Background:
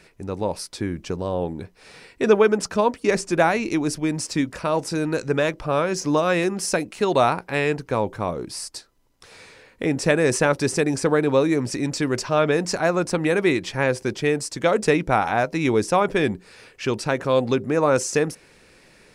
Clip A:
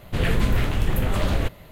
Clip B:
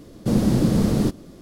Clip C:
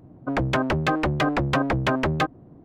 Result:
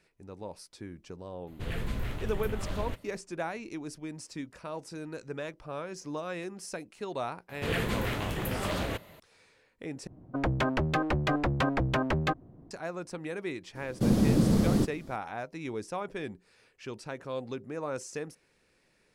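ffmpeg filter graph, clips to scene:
-filter_complex "[1:a]asplit=2[a][b];[0:a]volume=-16.5dB[c];[b]highpass=f=200:p=1[d];[3:a]lowshelf=f=61:g=8.5[e];[c]asplit=2[f][g];[f]atrim=end=10.074[h];[e]atrim=end=2.64,asetpts=PTS-STARTPTS,volume=-6dB[i];[g]atrim=start=12.706[j];[a]atrim=end=1.71,asetpts=PTS-STARTPTS,volume=-13dB,afade=t=in:d=0.004:c=hsin,afade=t=out:st=1.706:d=0.004:c=hsin,adelay=1470[k];[d]atrim=end=1.71,asetpts=PTS-STARTPTS,volume=-4dB,afade=t=in:d=0.004:c=hsin,afade=t=out:st=1.706:d=0.004:c=hsin,adelay=7490[l];[2:a]atrim=end=1.41,asetpts=PTS-STARTPTS,volume=-5dB,afade=t=in:d=0.004:c=hsin,afade=t=out:st=1.406:d=0.004:c=hsin,adelay=13750[m];[h][i]acrossfade=d=0.004:c1=hsin:c2=hsin[n];[n][j]acrossfade=d=0.004:c1=hsin:c2=hsin[o];[o][k][l][m]amix=inputs=4:normalize=0"

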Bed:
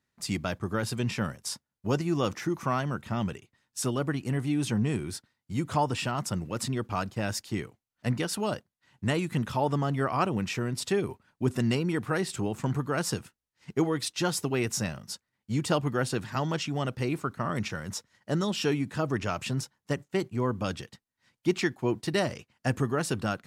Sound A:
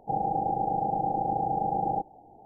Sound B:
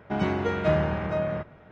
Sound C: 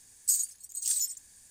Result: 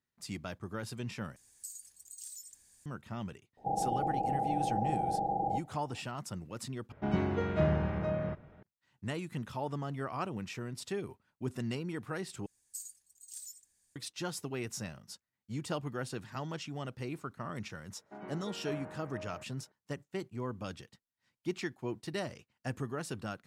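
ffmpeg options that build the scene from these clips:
-filter_complex "[3:a]asplit=2[a][b];[2:a]asplit=2[c][d];[0:a]volume=-10dB[e];[a]acompressor=threshold=-47dB:ratio=2.5:attack=37:release=61:knee=1:detection=peak[f];[1:a]asplit=2[g][h];[h]adelay=16,volume=-11.5dB[i];[g][i]amix=inputs=2:normalize=0[j];[c]lowshelf=f=370:g=7[k];[b]flanger=delay=4.5:depth=5.6:regen=84:speed=1.5:shape=triangular[l];[d]acrossover=split=200 2200:gain=0.126 1 0.141[m][n][o];[m][n][o]amix=inputs=3:normalize=0[p];[e]asplit=4[q][r][s][t];[q]atrim=end=1.364[u];[f]atrim=end=1.5,asetpts=PTS-STARTPTS,volume=-7.5dB[v];[r]atrim=start=2.856:end=6.924[w];[k]atrim=end=1.71,asetpts=PTS-STARTPTS,volume=-9dB[x];[s]atrim=start=8.626:end=12.464[y];[l]atrim=end=1.5,asetpts=PTS-STARTPTS,volume=-13dB[z];[t]atrim=start=13.956[aa];[j]atrim=end=2.45,asetpts=PTS-STARTPTS,volume=-5dB,afade=t=in:d=0.004:c=hsin,afade=t=out:st=2.446:d=0.004:c=hsin,adelay=157437S[ab];[p]atrim=end=1.71,asetpts=PTS-STARTPTS,volume=-18dB,afade=t=in:d=0.004:c=hsin,afade=t=out:st=1.706:d=0.004:c=hsin,adelay=18010[ac];[u][v]acrossfade=d=0.004:c1=hsin:c2=hsin[ad];[ad][w]acrossfade=d=0.004:c1=hsin:c2=hsin[ae];[ae][x]acrossfade=d=0.004:c1=hsin:c2=hsin[af];[af][y]acrossfade=d=0.004:c1=hsin:c2=hsin[ag];[ag][z]acrossfade=d=0.004:c1=hsin:c2=hsin[ah];[ah][aa]acrossfade=d=0.004:c1=hsin:c2=hsin[ai];[ai][ab][ac]amix=inputs=3:normalize=0"

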